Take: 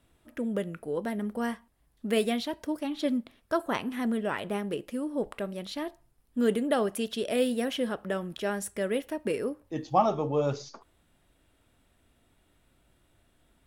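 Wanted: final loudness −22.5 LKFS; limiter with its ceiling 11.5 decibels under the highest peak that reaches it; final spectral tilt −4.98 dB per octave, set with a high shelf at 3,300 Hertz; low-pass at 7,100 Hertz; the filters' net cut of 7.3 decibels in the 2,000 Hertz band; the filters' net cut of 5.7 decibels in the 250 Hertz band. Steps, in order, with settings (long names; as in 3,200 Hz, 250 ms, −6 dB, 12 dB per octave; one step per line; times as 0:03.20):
low-pass filter 7,100 Hz
parametric band 250 Hz −6.5 dB
parametric band 2,000 Hz −8 dB
high-shelf EQ 3,300 Hz −4.5 dB
level +13.5 dB
brickwall limiter −10.5 dBFS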